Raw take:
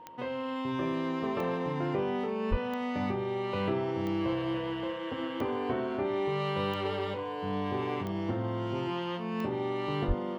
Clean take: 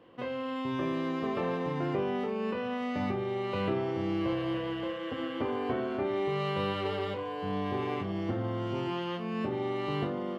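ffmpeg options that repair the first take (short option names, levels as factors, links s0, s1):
-filter_complex "[0:a]adeclick=t=4,bandreject=f=930:w=30,asplit=3[s0][s1][s2];[s0]afade=t=out:st=2.5:d=0.02[s3];[s1]highpass=f=140:w=0.5412,highpass=f=140:w=1.3066,afade=t=in:st=2.5:d=0.02,afade=t=out:st=2.62:d=0.02[s4];[s2]afade=t=in:st=2.62:d=0.02[s5];[s3][s4][s5]amix=inputs=3:normalize=0,asplit=3[s6][s7][s8];[s6]afade=t=out:st=10.07:d=0.02[s9];[s7]highpass=f=140:w=0.5412,highpass=f=140:w=1.3066,afade=t=in:st=10.07:d=0.02,afade=t=out:st=10.19:d=0.02[s10];[s8]afade=t=in:st=10.19:d=0.02[s11];[s9][s10][s11]amix=inputs=3:normalize=0"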